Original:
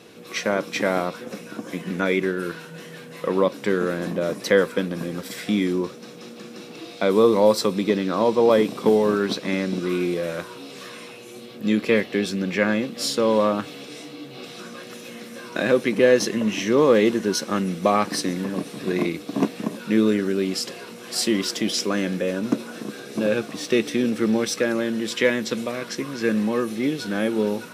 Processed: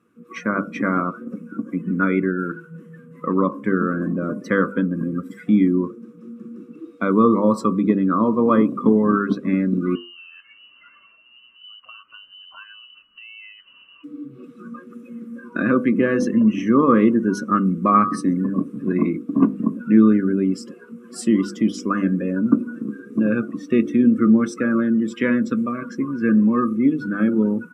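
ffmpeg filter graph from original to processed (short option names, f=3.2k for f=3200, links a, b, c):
-filter_complex "[0:a]asettb=1/sr,asplit=3[a][b][c];[a]atrim=end=9.954[d];[b]atrim=start=9.95:end=14.04,asetpts=PTS-STARTPTS,afade=t=in:d=0.004:c=qsin,afade=t=out:st=4.086:d=0.004:c=qsin,acompressor=threshold=-32dB:ratio=6:attack=3.2:release=140:knee=1:detection=peak,lowpass=f=2.7k:t=q:w=0.5098,lowpass=f=2.7k:t=q:w=0.6013,lowpass=f=2.7k:t=q:w=0.9,lowpass=f=2.7k:t=q:w=2.563,afreqshift=-3200[e];[c]atrim=start=14.036[f];[d][e]acrossfade=d=0.004:c1=hsin:c2=qsin[g];[g][f]acrossfade=d=0.004:c1=qsin:c2=hsin,bandreject=f=50.11:t=h:w=4,bandreject=f=100.22:t=h:w=4,bandreject=f=150.33:t=h:w=4,bandreject=f=200.44:t=h:w=4,bandreject=f=250.55:t=h:w=4,bandreject=f=300.66:t=h:w=4,bandreject=f=350.77:t=h:w=4,bandreject=f=400.88:t=h:w=4,bandreject=f=450.99:t=h:w=4,bandreject=f=501.1:t=h:w=4,bandreject=f=551.21:t=h:w=4,bandreject=f=601.32:t=h:w=4,bandreject=f=651.43:t=h:w=4,bandreject=f=701.54:t=h:w=4,bandreject=f=751.65:t=h:w=4,bandreject=f=801.76:t=h:w=4,bandreject=f=851.87:t=h:w=4,bandreject=f=901.98:t=h:w=4,bandreject=f=952.09:t=h:w=4,bandreject=f=1.0022k:t=h:w=4,bandreject=f=1.05231k:t=h:w=4,bandreject=f=1.10242k:t=h:w=4,bandreject=f=1.15253k:t=h:w=4,bandreject=f=1.20264k:t=h:w=4,bandreject=f=1.25275k:t=h:w=4,bandreject=f=1.30286k:t=h:w=4,bandreject=f=1.35297k:t=h:w=4,bandreject=f=1.40308k:t=h:w=4,bandreject=f=1.45319k:t=h:w=4,bandreject=f=1.5033k:t=h:w=4,afftdn=nr=19:nf=-31,firequalizer=gain_entry='entry(160,0);entry(250,6);entry(400,-6);entry(800,-14);entry(1200,8);entry(1800,-7);entry(2700,-10);entry(4100,-21);entry(7700,-7)':delay=0.05:min_phase=1,volume=4dB"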